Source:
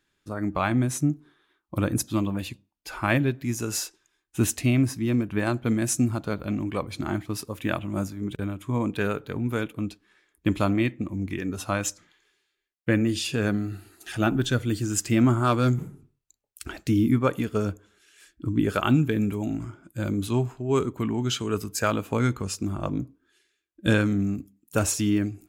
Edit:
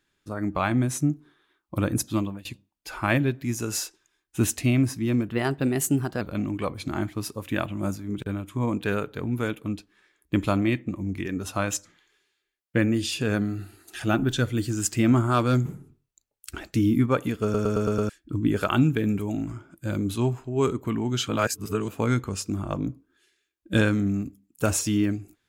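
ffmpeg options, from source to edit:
-filter_complex "[0:a]asplit=12[a][b][c][d][e][f][g][h][i][j][k][l];[a]atrim=end=2.45,asetpts=PTS-STARTPTS,afade=t=out:st=2.18:d=0.27:silence=0.0630957[m];[b]atrim=start=2.45:end=5.304,asetpts=PTS-STARTPTS,afade=t=in:d=0.004:c=hsin:silence=0.0630957[n];[c]atrim=start=5.3:end=6.34,asetpts=PTS-STARTPTS,asetrate=50274,aresample=44100[o];[d]atrim=start=6.336:end=17.672[p];[e]atrim=start=17.558:end=17.672[q];[f]atrim=start=17.558:end=17.672[r];[g]atrim=start=17.558:end=17.672[s];[h]atrim=start=17.558:end=17.672[t];[i]atrim=start=17.558:end=17.672[u];[j]atrim=start=18.218:end=21.412[v];[k]atrim=start=21.408:end=22.012,asetpts=PTS-STARTPTS,areverse[w];[l]atrim=start=22.008[x];[m][n]concat=n=2:v=0:a=1[y];[y][o]acrossfade=d=0.004:c1=hsin:c2=hsin[z];[z][p]acrossfade=d=0.004:c1=hsin:c2=hsin[aa];[aa][q]acrossfade=d=0.004:c1=hsin:c2=hsin[ab];[ab][r]acrossfade=d=0.004:c1=hsin:c2=hsin[ac];[ac][s]acrossfade=d=0.004:c1=hsin:c2=hsin[ad];[ad][t]acrossfade=d=0.004:c1=hsin:c2=hsin[ae];[ae][u]acrossfade=d=0.004:c1=hsin:c2=hsin[af];[af][v]acrossfade=d=0.004:c1=hsin:c2=hsin[ag];[ag][w]acrossfade=d=0.004:c1=hsin:c2=hsin[ah];[ah][x]acrossfade=d=0.004:c1=hsin:c2=hsin"

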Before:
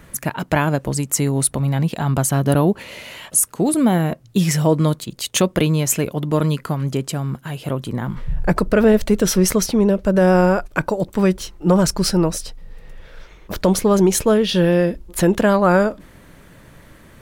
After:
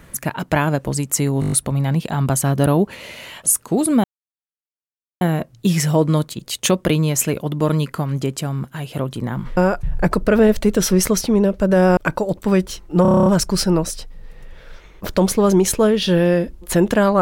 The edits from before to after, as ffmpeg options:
-filter_complex "[0:a]asplit=19[a][b][c][d][e][f][g][h][i][j][k][l][m][n][o][p][q][r][s];[a]atrim=end=1.422[t];[b]atrim=start=1.398:end=1.422[u];[c]atrim=start=1.398:end=1.422[v];[d]atrim=start=1.398:end=1.422[w];[e]atrim=start=1.398:end=1.422[x];[f]atrim=start=1.398:end=1.422[y];[g]atrim=start=1.398:end=3.92,asetpts=PTS-STARTPTS,afade=t=out:st=2.518:d=0.004:c=hsin,apad=pad_dur=1.17[z];[h]atrim=start=3.92:end=8.282,asetpts=PTS-STARTPTS,afade=t=in:d=0.004:c=hsin[aa];[i]atrim=start=10.418:end=10.682[ab];[j]atrim=start=8.278:end=10.422[ac];[k]atrim=start=10.678:end=11.762[ad];[l]atrim=start=11.728:end=11.762[ae];[m]atrim=start=11.728:end=11.762[af];[n]atrim=start=11.728:end=11.762[ag];[o]atrim=start=11.728:end=11.762[ah];[p]atrim=start=11.728:end=11.762[ai];[q]atrim=start=11.728:end=11.762[aj];[r]atrim=start=11.728:end=11.762[ak];[s]atrim=start=11.728[al];[t][u]acrossfade=d=0.004:c1=hsin:c2=hsin[am];[am][v]acrossfade=d=0.004:c1=hsin:c2=hsin[an];[an][w]acrossfade=d=0.004:c1=hsin:c2=hsin[ao];[ao][x]acrossfade=d=0.004:c1=hsin:c2=hsin[ap];[ap][y]acrossfade=d=0.004:c1=hsin:c2=hsin[aq];[z][aa]concat=n=2:v=0:a=1[ar];[aq][ar]acrossfade=d=0.004:c1=hsin:c2=hsin[as];[as][ab]acrossfade=d=0.004:c1=hsin:c2=hsin[at];[at][ac]acrossfade=d=0.004:c1=hsin:c2=hsin[au];[au][ad]acrossfade=d=0.004:c1=hsin:c2=hsin[av];[av][ae]acrossfade=d=0.004:c1=hsin:c2=hsin[aw];[aw][af]acrossfade=d=0.004:c1=hsin:c2=hsin[ax];[ax][ag]acrossfade=d=0.004:c1=hsin:c2=hsin[ay];[ay][ah]acrossfade=d=0.004:c1=hsin:c2=hsin[az];[az][ai]acrossfade=d=0.004:c1=hsin:c2=hsin[ba];[ba][aj]acrossfade=d=0.004:c1=hsin:c2=hsin[bb];[bb][ak]acrossfade=d=0.004:c1=hsin:c2=hsin[bc];[bc][al]acrossfade=d=0.004:c1=hsin:c2=hsin"

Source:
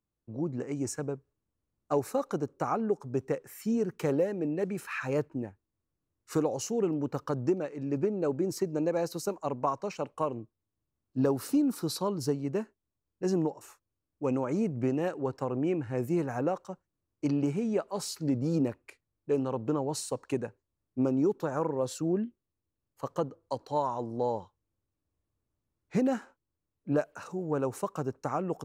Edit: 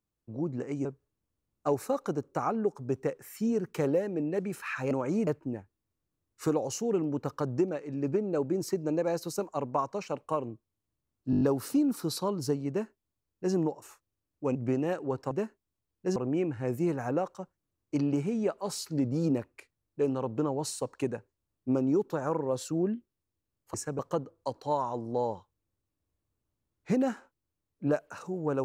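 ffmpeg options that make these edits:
-filter_complex "[0:a]asplit=14[a][b][c][d][e][f][g][h][i][j][k][l][m][n];[a]atrim=end=0.852[o];[b]atrim=start=1.098:end=5.162[p];[c]atrim=start=14.338:end=14.702[q];[d]atrim=start=5.158:end=11.222[r];[e]atrim=start=11.198:end=11.222[s];[f]atrim=start=11.198:end=11.222[t];[g]atrim=start=11.198:end=11.222[u];[h]atrim=start=11.198:end=11.222[v];[i]atrim=start=11.198:end=14.342[w];[j]atrim=start=14.698:end=15.462[x];[k]atrim=start=12.478:end=13.332[y];[l]atrim=start=15.458:end=23.042[z];[m]atrim=start=0.848:end=1.102[aa];[n]atrim=start=23.038[ab];[o][p]acrossfade=d=0.004:c1=hsin:c2=hsin[ac];[ac][q]acrossfade=d=0.004:c1=hsin:c2=hsin[ad];[ad][r]acrossfade=d=0.004:c1=hsin:c2=hsin[ae];[ae][s]acrossfade=d=0.004:c1=hsin:c2=hsin[af];[af][t]acrossfade=d=0.004:c1=hsin:c2=hsin[ag];[ag][u]acrossfade=d=0.004:c1=hsin:c2=hsin[ah];[ah][v]acrossfade=d=0.004:c1=hsin:c2=hsin[ai];[ai][w]acrossfade=d=0.004:c1=hsin:c2=hsin[aj];[aj][x]acrossfade=d=0.004:c1=hsin:c2=hsin[ak];[ak][y]acrossfade=d=0.004:c1=hsin:c2=hsin[al];[al][z]acrossfade=d=0.004:c1=hsin:c2=hsin[am];[am][aa]acrossfade=d=0.004:c1=hsin:c2=hsin[an];[an][ab]acrossfade=d=0.004:c1=hsin:c2=hsin"

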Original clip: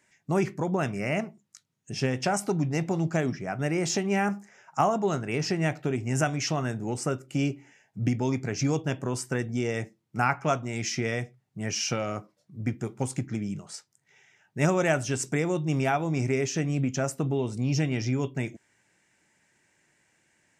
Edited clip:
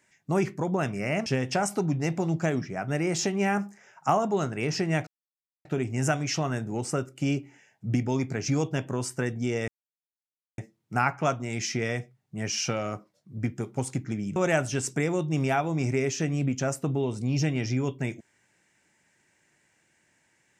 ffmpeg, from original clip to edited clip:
-filter_complex "[0:a]asplit=5[a][b][c][d][e];[a]atrim=end=1.262[f];[b]atrim=start=1.968:end=5.78,asetpts=PTS-STARTPTS,afade=t=out:st=3.808:d=0.004:c=hsin,apad=pad_dur=0.58[g];[c]atrim=start=5.78:end=9.81,asetpts=PTS-STARTPTS,afade=t=in:d=0.004:c=hsin,afade=t=out:st=4.026:d=0.004:c=hsin,apad=pad_dur=0.9[h];[d]atrim=start=9.81:end=13.592,asetpts=PTS-STARTPTS,afade=t=in:d=0.004:c=hsin[i];[e]atrim=start=14.718[j];[g][h][i]concat=n=3:v=0:a=1[k];[f][k]acrossfade=d=0.004:c1=hsin:c2=hsin[l];[l][j]acrossfade=d=0.004:c1=hsin:c2=hsin"

